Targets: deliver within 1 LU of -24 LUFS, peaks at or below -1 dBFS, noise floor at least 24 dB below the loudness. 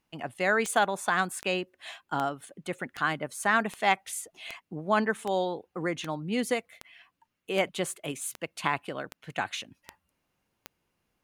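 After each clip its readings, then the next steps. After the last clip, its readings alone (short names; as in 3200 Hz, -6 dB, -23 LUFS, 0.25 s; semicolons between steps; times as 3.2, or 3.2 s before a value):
clicks 14; loudness -30.0 LUFS; peak -9.0 dBFS; loudness target -24.0 LUFS
-> de-click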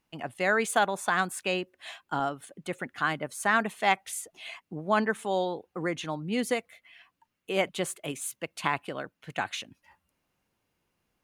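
clicks 0; loudness -30.0 LUFS; peak -9.0 dBFS; loudness target -24.0 LUFS
-> gain +6 dB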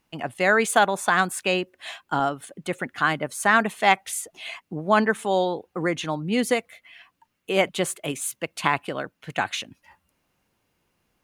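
loudness -24.0 LUFS; peak -3.0 dBFS; noise floor -75 dBFS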